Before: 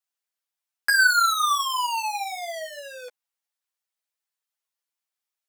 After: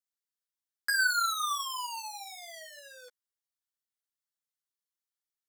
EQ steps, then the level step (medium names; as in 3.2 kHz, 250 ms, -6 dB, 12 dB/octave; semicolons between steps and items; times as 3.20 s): bass shelf 470 Hz -5 dB; peaking EQ 690 Hz -9.5 dB 0.94 oct; peaking EQ 2.5 kHz -14 dB 0.28 oct; -6.5 dB